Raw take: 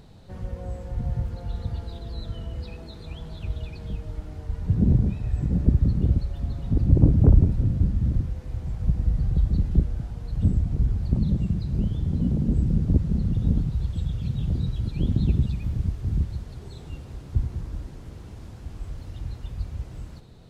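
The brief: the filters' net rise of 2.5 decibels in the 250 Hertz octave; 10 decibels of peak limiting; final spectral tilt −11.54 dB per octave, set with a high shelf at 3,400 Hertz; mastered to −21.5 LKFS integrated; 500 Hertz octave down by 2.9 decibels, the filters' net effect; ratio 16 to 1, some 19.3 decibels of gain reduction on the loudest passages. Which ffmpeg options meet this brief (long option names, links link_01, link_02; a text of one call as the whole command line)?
ffmpeg -i in.wav -af "equalizer=frequency=250:width_type=o:gain=5,equalizer=frequency=500:width_type=o:gain=-6.5,highshelf=frequency=3400:gain=-4.5,acompressor=threshold=-28dB:ratio=16,volume=17.5dB,alimiter=limit=-12dB:level=0:latency=1" out.wav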